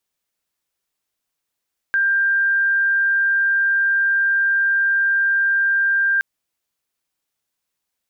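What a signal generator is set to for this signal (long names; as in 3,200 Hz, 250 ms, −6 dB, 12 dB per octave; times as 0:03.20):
tone sine 1,590 Hz −14.5 dBFS 4.27 s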